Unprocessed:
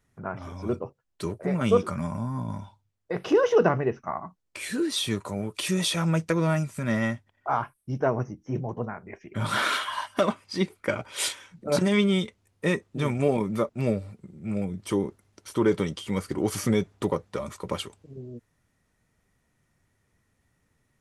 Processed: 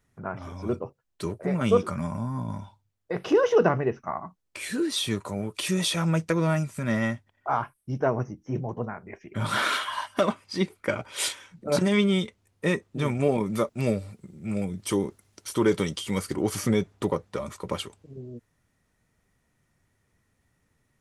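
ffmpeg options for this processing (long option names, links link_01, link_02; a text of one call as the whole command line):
ffmpeg -i in.wav -filter_complex "[0:a]asettb=1/sr,asplit=3[link_01][link_02][link_03];[link_01]atrim=end=13.464[link_04];[link_02]atrim=start=13.46:end=16.36,asetpts=PTS-STARTPTS,afade=type=in:duration=0.004:curve=qsin,afade=type=out:start_time=2.896:duration=0.004:curve=qsin,highshelf=frequency=3000:gain=8[link_05];[link_03]atrim=start=16.356[link_06];[link_04][link_05]acrossfade=duration=0.004:curve1=hsin:curve2=qsin[link_07];[link_07][link_06]acrossfade=duration=0.004:curve1=qsin:curve2=hsin" out.wav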